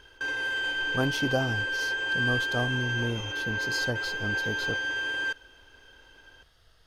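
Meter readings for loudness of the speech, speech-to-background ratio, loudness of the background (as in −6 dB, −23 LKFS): −33.0 LKFS, −4.0 dB, −29.0 LKFS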